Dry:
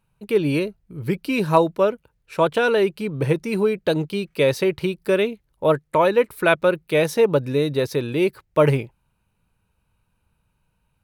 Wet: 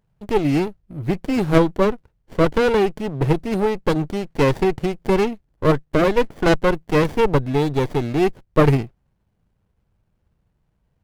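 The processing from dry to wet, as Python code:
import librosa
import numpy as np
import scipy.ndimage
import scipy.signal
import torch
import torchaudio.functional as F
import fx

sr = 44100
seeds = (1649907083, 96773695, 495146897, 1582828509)

y = fx.running_max(x, sr, window=33)
y = F.gain(torch.from_numpy(y), 2.5).numpy()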